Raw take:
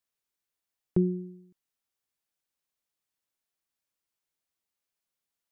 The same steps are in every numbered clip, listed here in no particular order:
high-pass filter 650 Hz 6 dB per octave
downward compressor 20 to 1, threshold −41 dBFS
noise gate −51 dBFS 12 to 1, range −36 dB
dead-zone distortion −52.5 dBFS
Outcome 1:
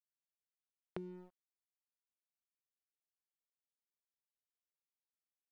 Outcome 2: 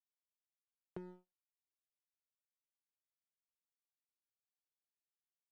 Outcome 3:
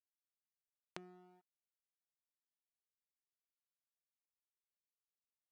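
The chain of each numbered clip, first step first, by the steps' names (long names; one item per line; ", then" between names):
high-pass filter, then noise gate, then dead-zone distortion, then downward compressor
high-pass filter, then downward compressor, then dead-zone distortion, then noise gate
noise gate, then downward compressor, then dead-zone distortion, then high-pass filter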